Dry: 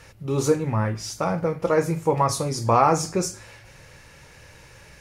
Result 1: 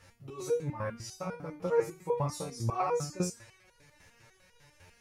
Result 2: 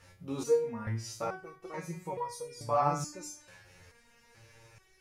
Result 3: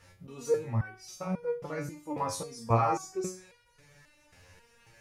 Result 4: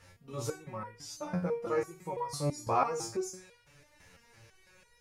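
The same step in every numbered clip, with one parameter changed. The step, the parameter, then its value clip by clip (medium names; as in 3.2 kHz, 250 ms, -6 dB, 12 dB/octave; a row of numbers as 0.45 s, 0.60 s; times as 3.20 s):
resonator arpeggio, rate: 10 Hz, 2.3 Hz, 3.7 Hz, 6 Hz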